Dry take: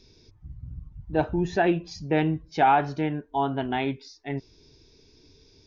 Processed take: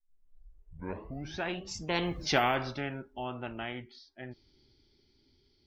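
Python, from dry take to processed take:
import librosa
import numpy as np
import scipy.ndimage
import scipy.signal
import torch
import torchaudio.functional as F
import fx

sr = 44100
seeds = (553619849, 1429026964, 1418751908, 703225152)

y = fx.tape_start_head(x, sr, length_s=1.84)
y = fx.doppler_pass(y, sr, speed_mps=36, closest_m=2.6, pass_at_s=2.24)
y = fx.spectral_comp(y, sr, ratio=2.0)
y = F.gain(torch.from_numpy(y), 3.0).numpy()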